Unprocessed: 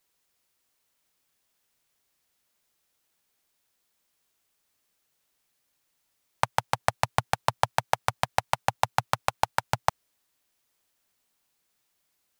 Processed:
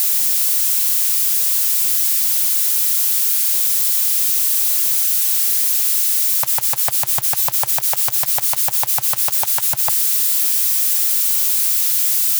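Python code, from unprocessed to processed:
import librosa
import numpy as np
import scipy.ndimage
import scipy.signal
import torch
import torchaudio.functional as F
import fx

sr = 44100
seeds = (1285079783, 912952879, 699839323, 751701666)

y = x + 0.5 * 10.0 ** (-10.0 / 20.0) * np.diff(np.sign(x), prepend=np.sign(x[:1]))
y = y * 10.0 ** (-3.0 / 20.0)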